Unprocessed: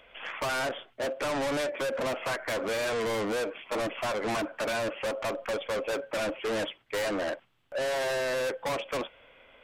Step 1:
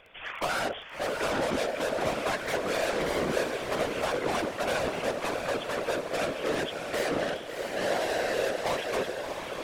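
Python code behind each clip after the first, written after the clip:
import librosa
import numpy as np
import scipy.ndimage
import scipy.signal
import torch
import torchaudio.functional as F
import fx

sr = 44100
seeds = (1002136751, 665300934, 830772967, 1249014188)

y = fx.echo_diffused(x, sr, ms=668, feedback_pct=42, wet_db=-4.5)
y = fx.whisperise(y, sr, seeds[0])
y = fx.dmg_crackle(y, sr, seeds[1], per_s=15.0, level_db=-39.0)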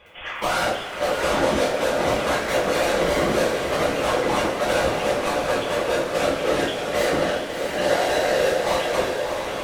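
y = fx.rev_double_slope(x, sr, seeds[2], early_s=0.39, late_s=4.7, knee_db=-18, drr_db=-8.0)
y = y * 10.0 ** (-1.0 / 20.0)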